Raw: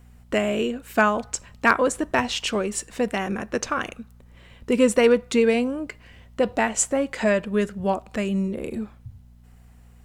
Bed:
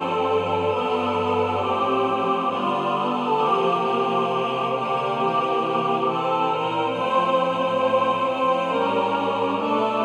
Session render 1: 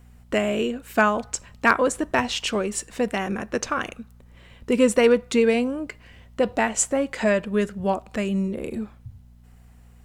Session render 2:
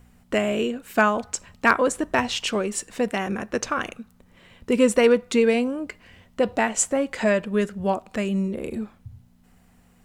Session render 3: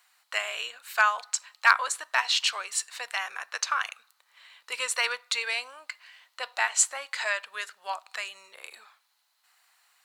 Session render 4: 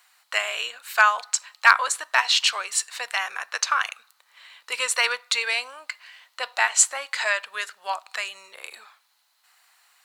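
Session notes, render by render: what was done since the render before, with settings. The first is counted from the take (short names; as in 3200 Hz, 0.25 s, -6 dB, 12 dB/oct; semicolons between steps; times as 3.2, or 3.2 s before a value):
nothing audible
de-hum 60 Hz, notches 2
HPF 970 Hz 24 dB/oct; bell 4200 Hz +10 dB 0.3 oct
gain +5 dB; limiter -2 dBFS, peak gain reduction 1.5 dB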